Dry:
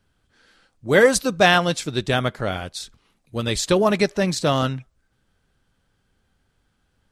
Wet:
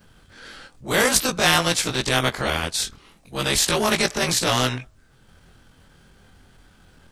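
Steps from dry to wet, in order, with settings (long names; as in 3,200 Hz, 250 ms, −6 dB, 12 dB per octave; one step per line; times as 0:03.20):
every overlapping window played backwards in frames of 47 ms
transient designer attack −8 dB, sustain −4 dB
every bin compressed towards the loudest bin 2 to 1
level +3.5 dB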